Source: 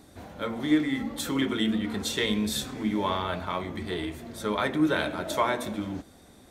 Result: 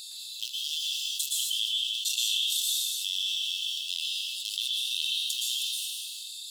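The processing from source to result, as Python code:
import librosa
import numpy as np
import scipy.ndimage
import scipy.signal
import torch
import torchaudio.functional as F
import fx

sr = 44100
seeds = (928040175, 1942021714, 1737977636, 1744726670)

y = fx.wiener(x, sr, points=15)
y = fx.brickwall_highpass(y, sr, low_hz=2600.0)
y = fx.high_shelf(y, sr, hz=8700.0, db=8.0)
y = fx.rev_plate(y, sr, seeds[0], rt60_s=0.99, hf_ratio=0.85, predelay_ms=105, drr_db=-4.0)
y = fx.env_flatten(y, sr, amount_pct=70)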